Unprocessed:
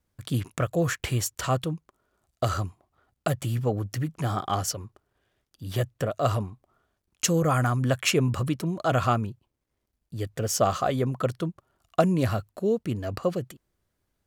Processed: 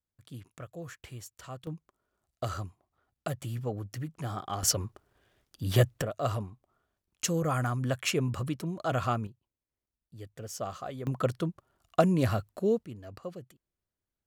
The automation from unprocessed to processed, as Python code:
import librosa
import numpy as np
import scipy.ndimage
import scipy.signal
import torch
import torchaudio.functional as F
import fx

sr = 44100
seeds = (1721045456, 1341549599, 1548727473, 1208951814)

y = fx.gain(x, sr, db=fx.steps((0.0, -17.5), (1.67, -8.0), (4.63, 4.0), (6.02, -6.0), (9.27, -13.5), (11.07, -2.0), (12.85, -14.0)))